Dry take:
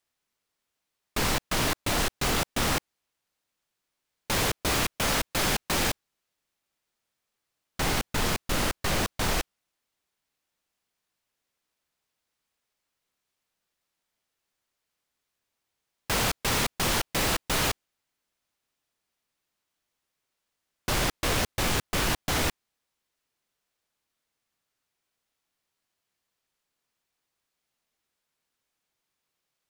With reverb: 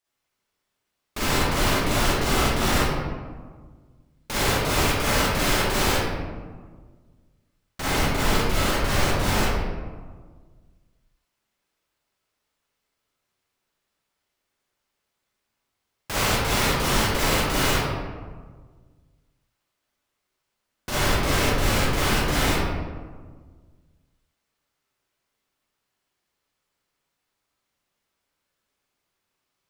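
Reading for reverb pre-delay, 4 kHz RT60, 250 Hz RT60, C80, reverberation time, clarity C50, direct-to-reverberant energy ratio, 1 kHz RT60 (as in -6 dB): 37 ms, 0.75 s, 1.9 s, -0.5 dB, 1.5 s, -5.0 dB, -9.5 dB, 1.5 s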